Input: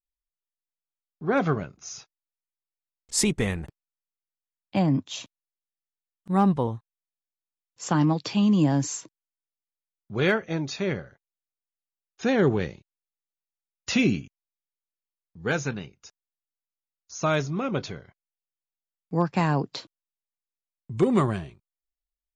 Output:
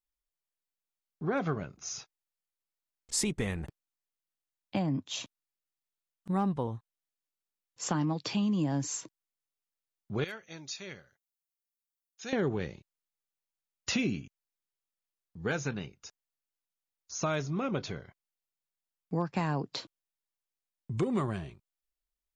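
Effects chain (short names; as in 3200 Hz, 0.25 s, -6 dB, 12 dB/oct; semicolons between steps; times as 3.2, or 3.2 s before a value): 10.24–12.33 pre-emphasis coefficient 0.9; compressor 2.5:1, threshold -31 dBFS, peak gain reduction 10.5 dB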